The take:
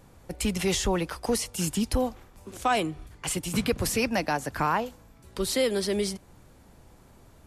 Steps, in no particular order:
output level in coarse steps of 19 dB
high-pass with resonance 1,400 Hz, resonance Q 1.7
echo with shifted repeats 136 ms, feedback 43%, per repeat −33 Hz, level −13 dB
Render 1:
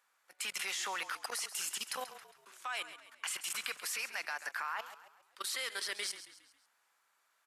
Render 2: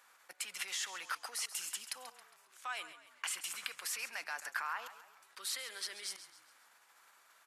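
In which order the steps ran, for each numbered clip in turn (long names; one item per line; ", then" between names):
high-pass with resonance, then output level in coarse steps, then echo with shifted repeats
output level in coarse steps, then high-pass with resonance, then echo with shifted repeats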